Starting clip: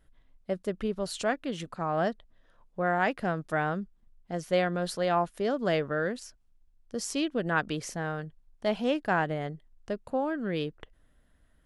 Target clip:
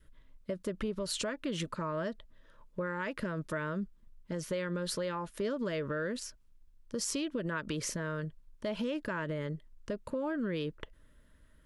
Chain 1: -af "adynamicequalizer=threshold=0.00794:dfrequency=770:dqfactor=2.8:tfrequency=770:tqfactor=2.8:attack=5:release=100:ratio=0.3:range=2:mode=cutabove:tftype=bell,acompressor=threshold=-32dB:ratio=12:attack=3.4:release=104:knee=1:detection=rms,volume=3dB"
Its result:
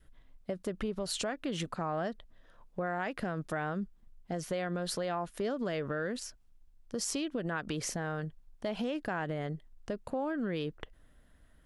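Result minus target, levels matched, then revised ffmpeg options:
1000 Hz band +3.0 dB
-af "adynamicequalizer=threshold=0.00794:dfrequency=770:dqfactor=2.8:tfrequency=770:tqfactor=2.8:attack=5:release=100:ratio=0.3:range=2:mode=cutabove:tftype=bell,acompressor=threshold=-32dB:ratio=12:attack=3.4:release=104:knee=1:detection=rms,asuperstop=centerf=750:order=12:qfactor=4.1,volume=3dB"

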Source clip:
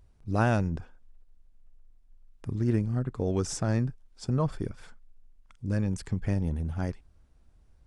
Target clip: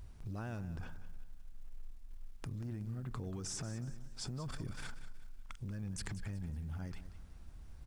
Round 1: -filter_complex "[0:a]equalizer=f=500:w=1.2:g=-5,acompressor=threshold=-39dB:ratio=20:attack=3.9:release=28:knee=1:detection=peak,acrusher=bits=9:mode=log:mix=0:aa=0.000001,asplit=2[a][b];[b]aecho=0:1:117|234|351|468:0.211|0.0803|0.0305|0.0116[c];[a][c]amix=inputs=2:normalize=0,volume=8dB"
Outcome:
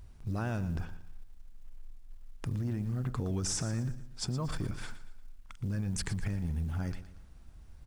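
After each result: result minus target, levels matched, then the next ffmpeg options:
compressor: peak gain reduction -8.5 dB; echo 68 ms early
-filter_complex "[0:a]equalizer=f=500:w=1.2:g=-5,acompressor=threshold=-48dB:ratio=20:attack=3.9:release=28:knee=1:detection=peak,acrusher=bits=9:mode=log:mix=0:aa=0.000001,asplit=2[a][b];[b]aecho=0:1:117|234|351|468:0.211|0.0803|0.0305|0.0116[c];[a][c]amix=inputs=2:normalize=0,volume=8dB"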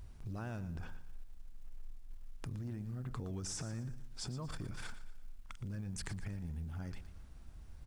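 echo 68 ms early
-filter_complex "[0:a]equalizer=f=500:w=1.2:g=-5,acompressor=threshold=-48dB:ratio=20:attack=3.9:release=28:knee=1:detection=peak,acrusher=bits=9:mode=log:mix=0:aa=0.000001,asplit=2[a][b];[b]aecho=0:1:185|370|555|740:0.211|0.0803|0.0305|0.0116[c];[a][c]amix=inputs=2:normalize=0,volume=8dB"

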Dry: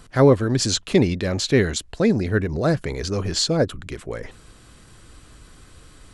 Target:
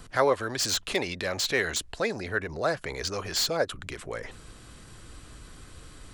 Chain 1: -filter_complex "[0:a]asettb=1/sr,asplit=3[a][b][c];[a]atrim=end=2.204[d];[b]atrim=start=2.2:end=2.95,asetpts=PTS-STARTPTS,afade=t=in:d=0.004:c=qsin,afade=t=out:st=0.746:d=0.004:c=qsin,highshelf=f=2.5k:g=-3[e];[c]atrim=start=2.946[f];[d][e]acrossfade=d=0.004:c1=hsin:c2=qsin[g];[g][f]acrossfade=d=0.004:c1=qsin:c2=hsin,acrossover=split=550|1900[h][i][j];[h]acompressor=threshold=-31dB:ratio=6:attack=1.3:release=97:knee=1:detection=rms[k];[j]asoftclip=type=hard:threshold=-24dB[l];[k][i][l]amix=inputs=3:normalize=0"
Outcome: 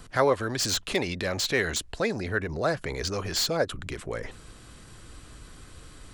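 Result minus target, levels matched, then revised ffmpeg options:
compressor: peak gain reduction -5.5 dB
-filter_complex "[0:a]asettb=1/sr,asplit=3[a][b][c];[a]atrim=end=2.204[d];[b]atrim=start=2.2:end=2.95,asetpts=PTS-STARTPTS,afade=t=in:d=0.004:c=qsin,afade=t=out:st=0.746:d=0.004:c=qsin,highshelf=f=2.5k:g=-3[e];[c]atrim=start=2.946[f];[d][e]acrossfade=d=0.004:c1=hsin:c2=qsin[g];[g][f]acrossfade=d=0.004:c1=qsin:c2=hsin,acrossover=split=550|1900[h][i][j];[h]acompressor=threshold=-37.5dB:ratio=6:attack=1.3:release=97:knee=1:detection=rms[k];[j]asoftclip=type=hard:threshold=-24dB[l];[k][i][l]amix=inputs=3:normalize=0"

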